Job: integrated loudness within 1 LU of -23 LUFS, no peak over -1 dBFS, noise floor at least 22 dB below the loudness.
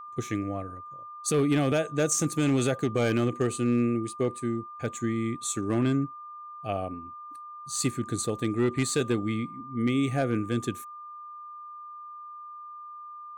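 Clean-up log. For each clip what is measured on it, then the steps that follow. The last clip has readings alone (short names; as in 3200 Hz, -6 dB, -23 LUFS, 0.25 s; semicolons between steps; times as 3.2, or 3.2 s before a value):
clipped 0.3%; flat tops at -17.0 dBFS; steady tone 1200 Hz; tone level -40 dBFS; loudness -28.0 LUFS; peak -17.0 dBFS; loudness target -23.0 LUFS
-> clip repair -17 dBFS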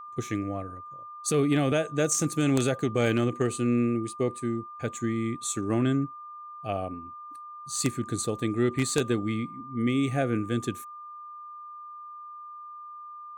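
clipped 0.0%; steady tone 1200 Hz; tone level -40 dBFS
-> notch 1200 Hz, Q 30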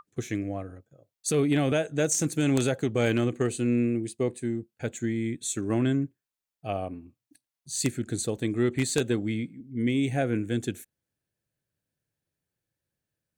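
steady tone none; loudness -28.0 LUFS; peak -8.0 dBFS; loudness target -23.0 LUFS
-> gain +5 dB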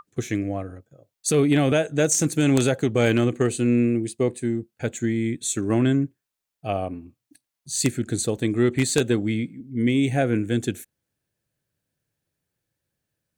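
loudness -23.0 LUFS; peak -3.0 dBFS; noise floor -85 dBFS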